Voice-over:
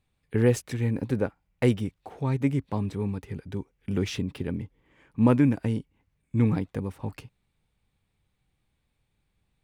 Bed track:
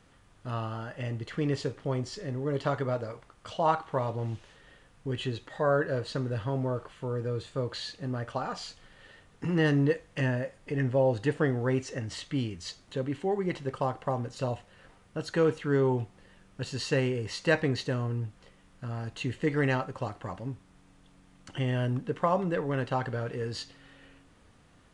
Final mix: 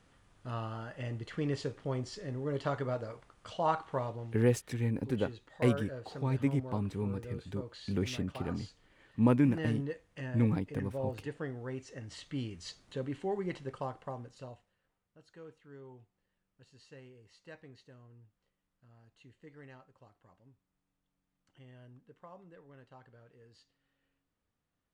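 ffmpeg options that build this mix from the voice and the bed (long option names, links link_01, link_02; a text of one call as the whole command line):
ffmpeg -i stem1.wav -i stem2.wav -filter_complex "[0:a]adelay=4000,volume=-5.5dB[link_01];[1:a]volume=2.5dB,afade=type=out:start_time=3.97:duration=0.36:silence=0.398107,afade=type=in:start_time=11.8:duration=0.8:silence=0.446684,afade=type=out:start_time=13.38:duration=1.42:silence=0.0944061[link_02];[link_01][link_02]amix=inputs=2:normalize=0" out.wav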